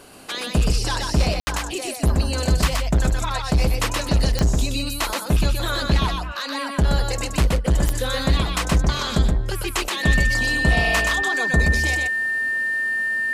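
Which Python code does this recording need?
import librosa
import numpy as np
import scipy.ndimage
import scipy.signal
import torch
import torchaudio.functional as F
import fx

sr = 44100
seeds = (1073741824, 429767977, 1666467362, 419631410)

y = fx.fix_declick_ar(x, sr, threshold=10.0)
y = fx.notch(y, sr, hz=1800.0, q=30.0)
y = fx.fix_ambience(y, sr, seeds[0], print_start_s=0.0, print_end_s=0.5, start_s=1.4, end_s=1.47)
y = fx.fix_echo_inverse(y, sr, delay_ms=124, level_db=-3.5)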